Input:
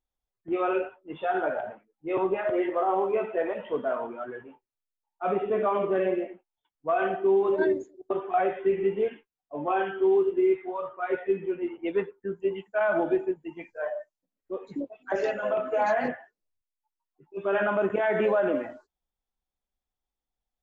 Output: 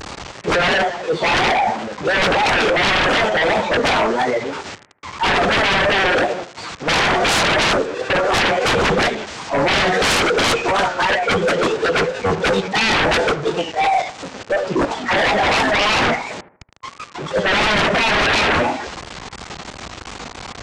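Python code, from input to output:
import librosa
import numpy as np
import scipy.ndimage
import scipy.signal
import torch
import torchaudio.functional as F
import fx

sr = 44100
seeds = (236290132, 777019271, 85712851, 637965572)

y = fx.delta_mod(x, sr, bps=32000, step_db=-42.0)
y = scipy.signal.sosfilt(scipy.signal.butter(2, 85.0, 'highpass', fs=sr, output='sos'), y)
y = fx.high_shelf(y, sr, hz=3300.0, db=-11.5)
y = fx.formant_shift(y, sr, semitones=4)
y = fx.fold_sine(y, sr, drive_db=19, ceiling_db=-12.0)
y = fx.echo_bbd(y, sr, ms=76, stages=1024, feedback_pct=35, wet_db=-14.5)
y = fx.vibrato(y, sr, rate_hz=2.9, depth_cents=76.0)
y = y * librosa.db_to_amplitude(-1.0)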